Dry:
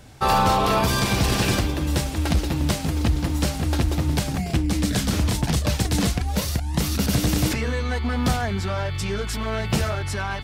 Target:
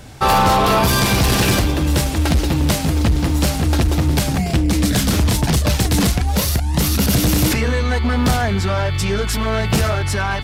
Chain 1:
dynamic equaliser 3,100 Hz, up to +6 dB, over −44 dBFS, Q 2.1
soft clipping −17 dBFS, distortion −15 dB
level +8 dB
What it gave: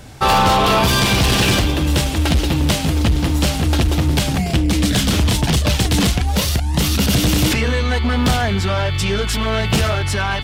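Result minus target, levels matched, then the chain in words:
4,000 Hz band +3.0 dB
dynamic equaliser 12,000 Hz, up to +6 dB, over −44 dBFS, Q 2.1
soft clipping −17 dBFS, distortion −15 dB
level +8 dB

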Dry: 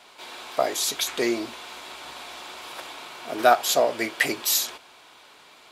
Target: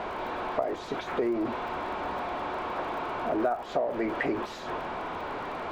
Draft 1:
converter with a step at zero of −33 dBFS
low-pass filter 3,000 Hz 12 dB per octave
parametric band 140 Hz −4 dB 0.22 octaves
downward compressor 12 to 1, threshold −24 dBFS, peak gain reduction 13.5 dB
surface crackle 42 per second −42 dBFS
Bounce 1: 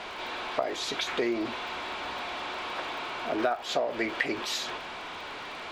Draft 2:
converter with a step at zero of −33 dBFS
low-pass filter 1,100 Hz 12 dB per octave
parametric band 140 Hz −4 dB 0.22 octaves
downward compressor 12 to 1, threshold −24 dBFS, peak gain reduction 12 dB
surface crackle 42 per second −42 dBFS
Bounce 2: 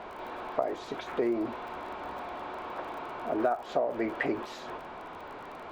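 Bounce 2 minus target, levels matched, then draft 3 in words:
converter with a step at zero: distortion −8 dB
converter with a step at zero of −23.5 dBFS
low-pass filter 1,100 Hz 12 dB per octave
parametric band 140 Hz −4 dB 0.22 octaves
downward compressor 12 to 1, threshold −24 dBFS, peak gain reduction 12.5 dB
surface crackle 42 per second −42 dBFS

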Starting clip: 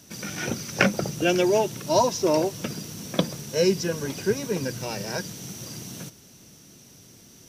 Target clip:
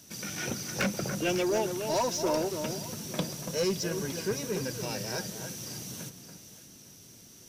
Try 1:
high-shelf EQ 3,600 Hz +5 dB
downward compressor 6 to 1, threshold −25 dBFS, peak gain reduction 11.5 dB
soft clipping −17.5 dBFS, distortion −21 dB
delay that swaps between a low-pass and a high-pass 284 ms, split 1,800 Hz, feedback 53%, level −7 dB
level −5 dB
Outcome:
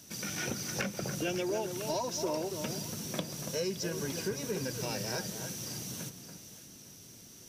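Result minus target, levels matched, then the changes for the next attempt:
downward compressor: peak gain reduction +11.5 dB
remove: downward compressor 6 to 1, threshold −25 dBFS, peak gain reduction 11.5 dB

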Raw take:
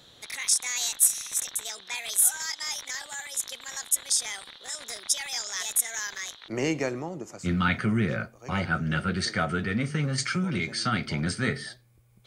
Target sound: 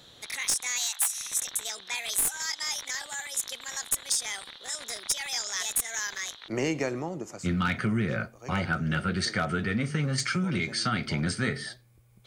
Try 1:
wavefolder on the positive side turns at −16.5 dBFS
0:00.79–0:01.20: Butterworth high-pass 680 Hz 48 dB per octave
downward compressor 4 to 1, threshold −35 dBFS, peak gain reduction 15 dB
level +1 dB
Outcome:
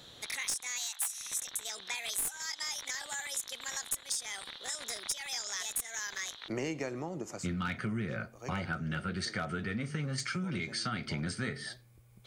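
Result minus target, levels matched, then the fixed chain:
downward compressor: peak gain reduction +8 dB
wavefolder on the positive side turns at −16.5 dBFS
0:00.79–0:01.20: Butterworth high-pass 680 Hz 48 dB per octave
downward compressor 4 to 1, threshold −24.5 dBFS, peak gain reduction 7 dB
level +1 dB

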